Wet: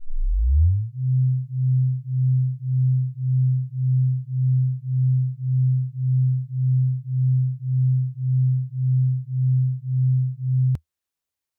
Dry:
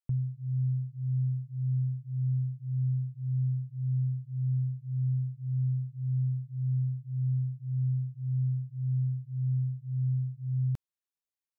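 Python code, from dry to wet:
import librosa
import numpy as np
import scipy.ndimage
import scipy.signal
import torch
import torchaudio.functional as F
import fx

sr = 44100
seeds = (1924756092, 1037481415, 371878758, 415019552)

y = fx.tape_start_head(x, sr, length_s=0.98)
y = fx.peak_eq(y, sr, hz=80.0, db=8.5, octaves=0.64)
y = fx.rider(y, sr, range_db=4, speed_s=0.5)
y = y * 10.0 ** (7.5 / 20.0)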